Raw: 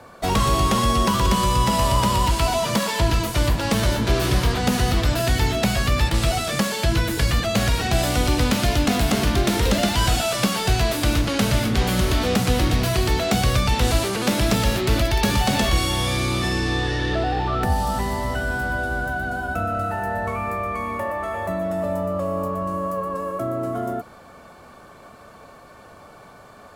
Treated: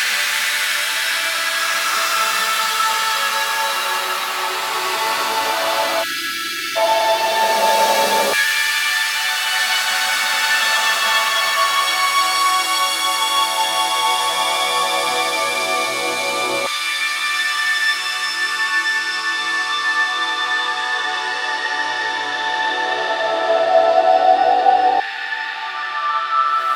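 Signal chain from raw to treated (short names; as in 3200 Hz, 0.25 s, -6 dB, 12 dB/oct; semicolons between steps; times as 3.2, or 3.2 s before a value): Paulstretch 8.1×, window 0.25 s, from 14.27; LFO high-pass saw down 0.12 Hz 610–1800 Hz; spectral delete 6.03–6.76, 400–1300 Hz; gain +5 dB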